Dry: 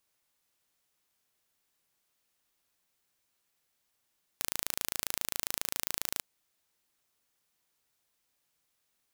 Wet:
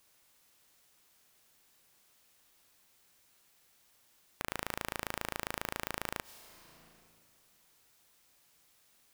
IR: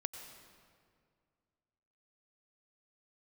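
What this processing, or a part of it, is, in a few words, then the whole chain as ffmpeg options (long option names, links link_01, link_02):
ducked reverb: -filter_complex "[0:a]asplit=3[link_01][link_02][link_03];[1:a]atrim=start_sample=2205[link_04];[link_02][link_04]afir=irnorm=-1:irlink=0[link_05];[link_03]apad=whole_len=402724[link_06];[link_05][link_06]sidechaincompress=threshold=-44dB:ratio=8:attack=48:release=553,volume=2.5dB[link_07];[link_01][link_07]amix=inputs=2:normalize=0,acrossover=split=2500[link_08][link_09];[link_09]acompressor=threshold=-38dB:ratio=4:attack=1:release=60[link_10];[link_08][link_10]amix=inputs=2:normalize=0,volume=4dB"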